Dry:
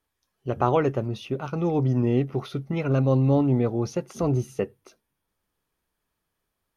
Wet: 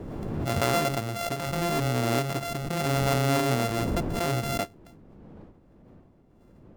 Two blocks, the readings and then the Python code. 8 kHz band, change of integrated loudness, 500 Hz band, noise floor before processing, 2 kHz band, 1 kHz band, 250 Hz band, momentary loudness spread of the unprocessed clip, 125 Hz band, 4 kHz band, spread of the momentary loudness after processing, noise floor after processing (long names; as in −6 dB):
can't be measured, −2.5 dB, −3.0 dB, −81 dBFS, +8.5 dB, +2.0 dB, −5.0 dB, 11 LU, −4.0 dB, +11.0 dB, 7 LU, −57 dBFS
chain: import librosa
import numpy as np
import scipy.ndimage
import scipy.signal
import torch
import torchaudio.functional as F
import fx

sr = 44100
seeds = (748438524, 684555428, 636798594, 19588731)

y = np.r_[np.sort(x[:len(x) // 64 * 64].reshape(-1, 64), axis=1).ravel(), x[len(x) // 64 * 64:]]
y = fx.dmg_wind(y, sr, seeds[0], corner_hz=290.0, level_db=-38.0)
y = fx.pre_swell(y, sr, db_per_s=24.0)
y = y * 10.0 ** (-4.5 / 20.0)